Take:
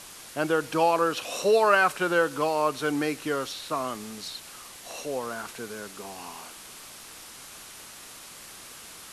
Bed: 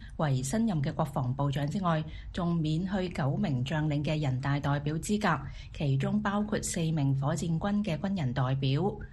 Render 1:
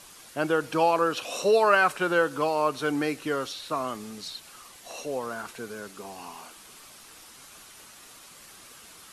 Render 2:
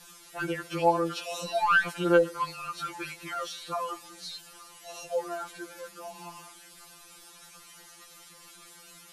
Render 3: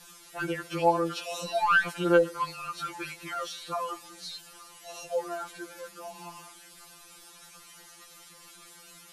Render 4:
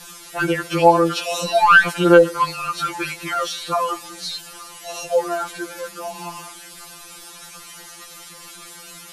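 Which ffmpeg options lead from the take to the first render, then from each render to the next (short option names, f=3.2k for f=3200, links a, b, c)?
-af "afftdn=nr=6:nf=-46"
-af "asoftclip=type=tanh:threshold=-13dB,afftfilt=real='re*2.83*eq(mod(b,8),0)':imag='im*2.83*eq(mod(b,8),0)':win_size=2048:overlap=0.75"
-af anull
-af "volume=11.5dB,alimiter=limit=-1dB:level=0:latency=1"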